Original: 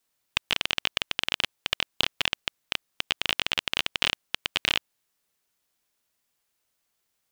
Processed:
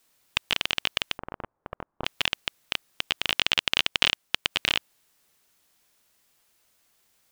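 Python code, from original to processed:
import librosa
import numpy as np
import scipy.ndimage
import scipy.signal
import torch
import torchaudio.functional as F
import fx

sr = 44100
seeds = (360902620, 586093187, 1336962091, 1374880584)

y = fx.law_mismatch(x, sr, coded='mu')
y = fx.lowpass(y, sr, hz=1200.0, slope=24, at=(1.17, 2.04), fade=0.02)
y = fx.transient(y, sr, attack_db=4, sustain_db=-5, at=(3.38, 4.5), fade=0.02)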